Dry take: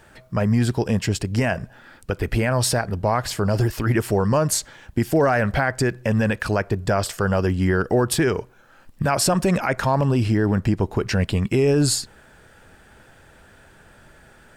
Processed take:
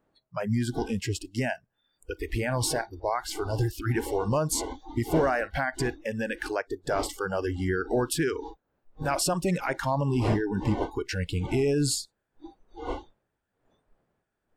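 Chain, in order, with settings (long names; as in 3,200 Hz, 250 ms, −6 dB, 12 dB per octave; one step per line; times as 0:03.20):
wind on the microphone 640 Hz −31 dBFS
noise reduction from a noise print of the clip's start 28 dB
level −6.5 dB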